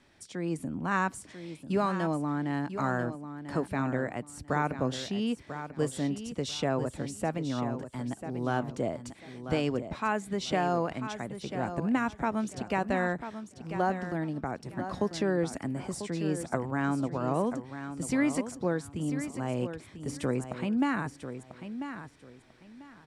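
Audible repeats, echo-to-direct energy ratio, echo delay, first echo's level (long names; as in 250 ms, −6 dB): 2, −10.0 dB, 993 ms, −10.0 dB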